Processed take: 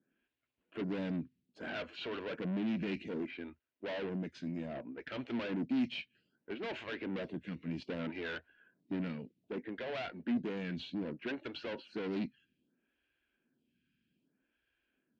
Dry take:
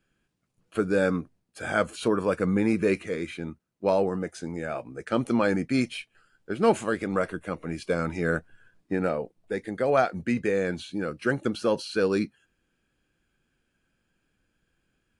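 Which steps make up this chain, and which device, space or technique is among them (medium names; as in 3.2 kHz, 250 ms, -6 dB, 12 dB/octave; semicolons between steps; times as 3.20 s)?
vibe pedal into a guitar amplifier (lamp-driven phase shifter 0.63 Hz; valve stage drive 34 dB, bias 0.5; cabinet simulation 85–4100 Hz, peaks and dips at 100 Hz -8 dB, 250 Hz +7 dB, 500 Hz -5 dB, 800 Hz -7 dB, 1.2 kHz -10 dB, 2.8 kHz +3 dB)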